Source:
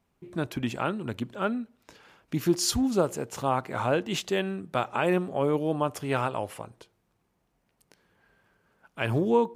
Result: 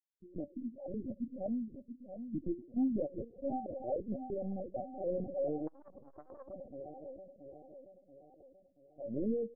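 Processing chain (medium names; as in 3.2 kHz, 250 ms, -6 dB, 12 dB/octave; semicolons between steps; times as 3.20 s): local Wiener filter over 41 samples; gate -52 dBFS, range -38 dB; high-pass 270 Hz 12 dB/octave; 0.54–0.94 s: level held to a coarse grid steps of 12 dB; peak limiter -21.5 dBFS, peak gain reduction 10 dB; rippled Chebyshev low-pass 790 Hz, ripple 9 dB; loudest bins only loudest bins 8; on a send: feedback delay 683 ms, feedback 50%, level -9 dB; on the sum: LPC vocoder at 8 kHz pitch kept; 5.67–6.53 s: transformer saturation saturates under 450 Hz; trim +2 dB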